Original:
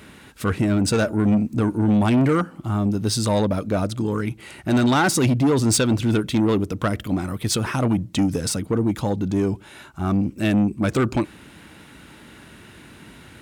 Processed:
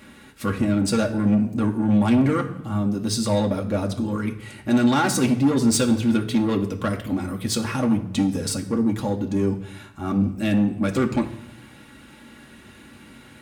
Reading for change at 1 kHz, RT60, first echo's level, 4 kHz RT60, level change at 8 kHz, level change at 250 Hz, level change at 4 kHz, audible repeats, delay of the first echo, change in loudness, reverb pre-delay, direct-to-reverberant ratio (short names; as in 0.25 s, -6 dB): -2.0 dB, 0.80 s, none, 0.70 s, -2.0 dB, 0.0 dB, -2.0 dB, none, none, -1.0 dB, 4 ms, 1.0 dB